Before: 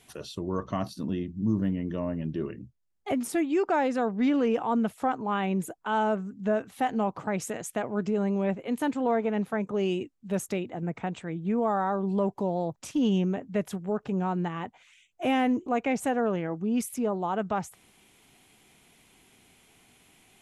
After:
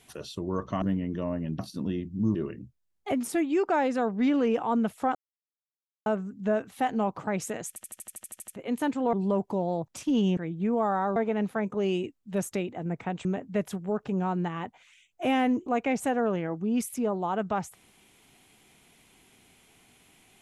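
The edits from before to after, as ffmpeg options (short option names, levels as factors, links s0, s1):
-filter_complex "[0:a]asplit=21[s0][s1][s2][s3][s4][s5][s6][s7][s8][s9][s10][s11][s12][s13][s14][s15][s16][s17][s18][s19][s20];[s0]atrim=end=0.822[s21];[s1]atrim=start=1.578:end=2.352[s22];[s2]atrim=start=0.818:end=1.582[s23];[s3]atrim=start=2.348:end=5.15,asetpts=PTS-STARTPTS,afade=t=out:st=2.798:d=0.004:c=hsin[s24];[s4]atrim=start=5.15:end=6.06,asetpts=PTS-STARTPTS,volume=0[s25];[s5]atrim=start=6.06:end=7.762,asetpts=PTS-STARTPTS,afade=t=in:d=0.004:c=hsin[s26];[s6]atrim=start=7.678:end=7.762[s27];[s7]atrim=start=7.678:end=7.762[s28];[s8]atrim=start=7.678:end=7.762[s29];[s9]atrim=start=7.678:end=7.762[s30];[s10]atrim=start=7.678:end=7.762[s31];[s11]atrim=start=7.678:end=7.762[s32];[s12]atrim=start=7.678:end=7.762[s33];[s13]atrim=start=7.678:end=7.762[s34];[s14]atrim=start=7.678:end=7.762[s35];[s15]atrim=start=7.678:end=7.762[s36];[s16]atrim=start=8.558:end=9.132[s37];[s17]atrim=start=12.008:end=13.252[s38];[s18]atrim=start=11.218:end=12.012[s39];[s19]atrim=start=9.128:end=11.222[s40];[s20]atrim=start=13.248[s41];[s21][s22]acrossfade=d=0.004:c1=hsin:c2=hsin[s42];[s42][s23]acrossfade=d=0.004:c1=hsin:c2=hsin[s43];[s24][s25][s26]concat=n=3:v=0:a=1[s44];[s43][s44]acrossfade=d=0.004:c1=hsin:c2=hsin[s45];[s45][s27]acrossfade=d=0.004:c1=hsin:c2=hsin[s46];[s46][s28]acrossfade=d=0.004:c1=hsin:c2=hsin[s47];[s47][s29]acrossfade=d=0.004:c1=hsin:c2=hsin[s48];[s48][s30]acrossfade=d=0.004:c1=hsin:c2=hsin[s49];[s49][s31]acrossfade=d=0.004:c1=hsin:c2=hsin[s50];[s50][s32]acrossfade=d=0.004:c1=hsin:c2=hsin[s51];[s51][s33]acrossfade=d=0.004:c1=hsin:c2=hsin[s52];[s52][s34]acrossfade=d=0.004:c1=hsin:c2=hsin[s53];[s53][s35]acrossfade=d=0.004:c1=hsin:c2=hsin[s54];[s54][s36]acrossfade=d=0.004:c1=hsin:c2=hsin[s55];[s55][s37]acrossfade=d=0.004:c1=hsin:c2=hsin[s56];[s56][s38]acrossfade=d=0.004:c1=hsin:c2=hsin[s57];[s57][s39]acrossfade=d=0.004:c1=hsin:c2=hsin[s58];[s58][s40]acrossfade=d=0.004:c1=hsin:c2=hsin[s59];[s59][s41]acrossfade=d=0.004:c1=hsin:c2=hsin"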